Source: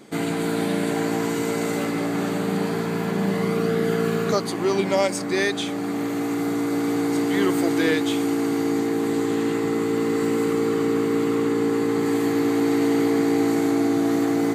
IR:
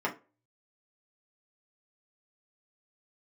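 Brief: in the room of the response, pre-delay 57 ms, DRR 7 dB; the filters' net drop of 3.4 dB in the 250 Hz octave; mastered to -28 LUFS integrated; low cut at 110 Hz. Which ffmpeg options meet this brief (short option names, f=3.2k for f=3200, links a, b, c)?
-filter_complex "[0:a]highpass=110,equalizer=f=250:t=o:g=-4,asplit=2[a][b];[1:a]atrim=start_sample=2205,adelay=57[c];[b][c]afir=irnorm=-1:irlink=0,volume=-15.5dB[d];[a][d]amix=inputs=2:normalize=0,volume=-4.5dB"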